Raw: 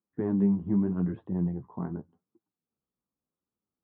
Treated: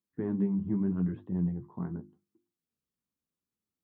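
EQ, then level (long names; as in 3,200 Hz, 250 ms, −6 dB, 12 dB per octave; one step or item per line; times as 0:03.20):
parametric band 700 Hz −7 dB 1.7 octaves
mains-hum notches 50/100/150/200/250/300/350 Hz
0.0 dB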